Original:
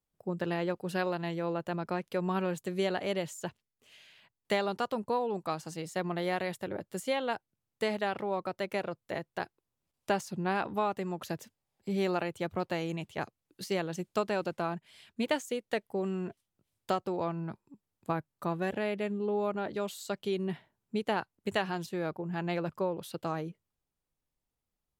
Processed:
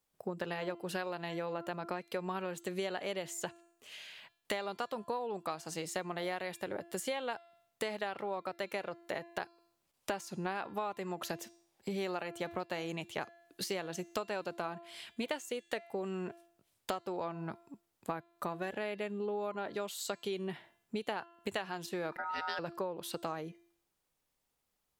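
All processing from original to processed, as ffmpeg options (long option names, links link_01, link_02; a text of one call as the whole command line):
ffmpeg -i in.wav -filter_complex "[0:a]asettb=1/sr,asplit=3[link_01][link_02][link_03];[link_01]atrim=end=22.124[link_04];[link_02]atrim=start=22.12:end=22.59,asetpts=PTS-STARTPTS,afade=type=in:duration=0.004:curve=qsin,afade=type=out:start_time=0.466:duration=0.004:curve=qsin,aeval=exprs='val(0)*sin(2*PI*1100*n/s)':channel_layout=same,equalizer=frequency=4700:width_type=o:width=0.36:gain=13.5,acompressor=mode=upward:threshold=-39dB:ratio=2.5:attack=3.2:release=140:knee=2.83:detection=peak[link_05];[link_03]atrim=start=22.586[link_06];[link_04][link_05]acrossfade=duration=0.004:curve1=hsin:curve2=qsin[link_07];[link_07][link_06]acrossfade=duration=0.004:curve1=qsin:curve2=hsin,lowshelf=frequency=250:gain=-11.5,bandreject=frequency=341.3:width_type=h:width=4,bandreject=frequency=682.6:width_type=h:width=4,bandreject=frequency=1023.9:width_type=h:width=4,bandreject=frequency=1365.2:width_type=h:width=4,bandreject=frequency=1706.5:width_type=h:width=4,bandreject=frequency=2047.8:width_type=h:width=4,bandreject=frequency=2389.1:width_type=h:width=4,bandreject=frequency=2730.4:width_type=h:width=4,bandreject=frequency=3071.7:width_type=h:width=4,bandreject=frequency=3413:width_type=h:width=4,bandreject=frequency=3754.3:width_type=h:width=4,bandreject=frequency=4095.6:width_type=h:width=4,bandreject=frequency=4436.9:width_type=h:width=4,bandreject=frequency=4778.2:width_type=h:width=4,bandreject=frequency=5119.5:width_type=h:width=4,bandreject=frequency=5460.8:width_type=h:width=4,bandreject=frequency=5802.1:width_type=h:width=4,bandreject=frequency=6143.4:width_type=h:width=4,bandreject=frequency=6484.7:width_type=h:width=4,bandreject=frequency=6826:width_type=h:width=4,bandreject=frequency=7167.3:width_type=h:width=4,bandreject=frequency=7508.6:width_type=h:width=4,bandreject=frequency=7849.9:width_type=h:width=4,bandreject=frequency=8191.2:width_type=h:width=4,bandreject=frequency=8532.5:width_type=h:width=4,bandreject=frequency=8873.8:width_type=h:width=4,bandreject=frequency=9215.1:width_type=h:width=4,bandreject=frequency=9556.4:width_type=h:width=4,acompressor=threshold=-44dB:ratio=4,volume=8dB" out.wav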